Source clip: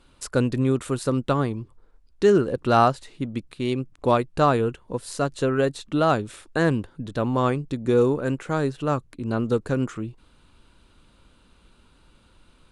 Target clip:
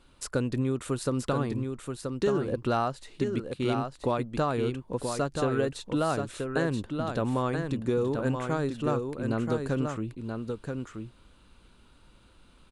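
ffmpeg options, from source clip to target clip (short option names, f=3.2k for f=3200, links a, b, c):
-filter_complex "[0:a]acompressor=threshold=-21dB:ratio=6,asplit=2[a][b];[b]aecho=0:1:979:0.531[c];[a][c]amix=inputs=2:normalize=0,volume=-2.5dB"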